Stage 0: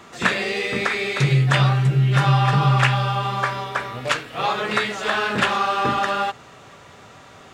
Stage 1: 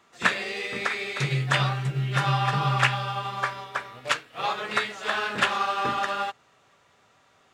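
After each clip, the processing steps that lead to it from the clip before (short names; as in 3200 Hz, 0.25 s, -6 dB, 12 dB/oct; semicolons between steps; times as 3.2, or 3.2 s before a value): low shelf 430 Hz -6.5 dB; upward expander 1.5:1, over -43 dBFS; gain -1 dB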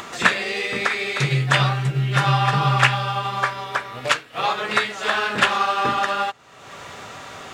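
upward compressor, threshold -26 dBFS; gain +5.5 dB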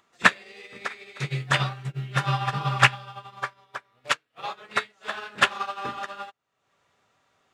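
upward expander 2.5:1, over -33 dBFS; gain +1 dB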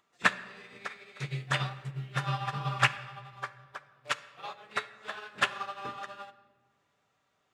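shoebox room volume 2000 m³, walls mixed, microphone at 0.42 m; gain -7.5 dB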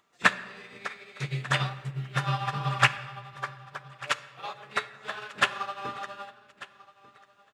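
feedback echo 1.193 s, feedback 27%, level -20 dB; gain +3.5 dB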